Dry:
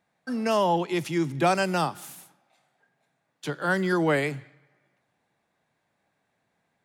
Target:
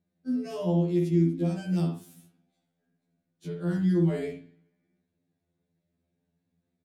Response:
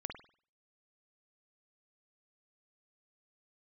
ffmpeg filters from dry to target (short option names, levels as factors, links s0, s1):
-filter_complex "[0:a]asettb=1/sr,asplit=3[s0][s1][s2];[s0]atrim=end=1.214[s3];[s1]atrim=start=1.21:end=1.72,asetpts=PTS-STARTPTS,afade=t=in:d=0.004:c=qsin,afade=t=out:st=0.506:d=0.004:c=qsin,acompressor=threshold=0.0562:ratio=2.5[s4];[s2]atrim=start=1.716[s5];[s3][s4]acrossfade=d=0.004:c1=hsin:c2=qsin[s6];[s6][s5]acrossfade=d=0.004:c1=qsin:c2=hsin,firequalizer=gain_entry='entry(190,0);entry(890,-24);entry(3900,-14)':delay=0.05:min_phase=1[s7];[1:a]atrim=start_sample=2205,afade=t=out:st=0.19:d=0.01,atrim=end_sample=8820[s8];[s7][s8]afir=irnorm=-1:irlink=0,afftfilt=real='re*2*eq(mod(b,4),0)':imag='im*2*eq(mod(b,4),0)':win_size=2048:overlap=0.75,volume=2.24"